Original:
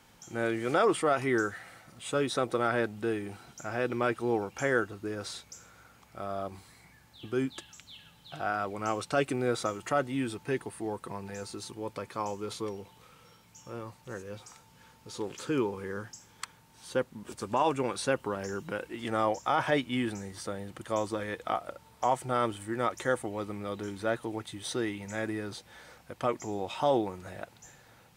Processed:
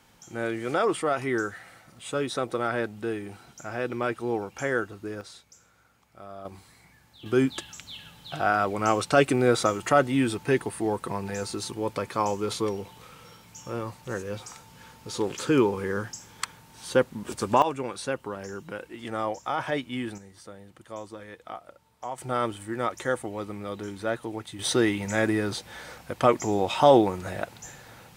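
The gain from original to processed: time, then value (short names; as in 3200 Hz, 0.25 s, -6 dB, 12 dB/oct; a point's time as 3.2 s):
+0.5 dB
from 5.21 s -6.5 dB
from 6.45 s +0.5 dB
from 7.26 s +8 dB
from 17.62 s -1.5 dB
from 20.18 s -8 dB
from 22.18 s +1.5 dB
from 24.59 s +9.5 dB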